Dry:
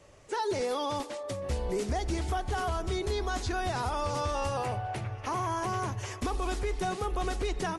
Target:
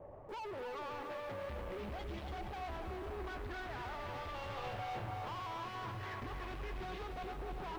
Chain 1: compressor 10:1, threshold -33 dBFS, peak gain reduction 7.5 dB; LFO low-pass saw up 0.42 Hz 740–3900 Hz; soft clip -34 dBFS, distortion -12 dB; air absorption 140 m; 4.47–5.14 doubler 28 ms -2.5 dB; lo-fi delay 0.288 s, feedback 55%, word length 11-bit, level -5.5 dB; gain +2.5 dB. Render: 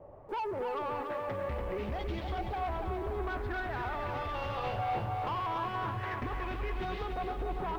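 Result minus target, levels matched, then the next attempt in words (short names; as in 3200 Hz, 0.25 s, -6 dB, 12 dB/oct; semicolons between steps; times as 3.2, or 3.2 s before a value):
soft clip: distortion -6 dB
compressor 10:1, threshold -33 dBFS, peak gain reduction 7.5 dB; LFO low-pass saw up 0.42 Hz 740–3900 Hz; soft clip -45 dBFS, distortion -5 dB; air absorption 140 m; 4.47–5.14 doubler 28 ms -2.5 dB; lo-fi delay 0.288 s, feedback 55%, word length 11-bit, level -5.5 dB; gain +2.5 dB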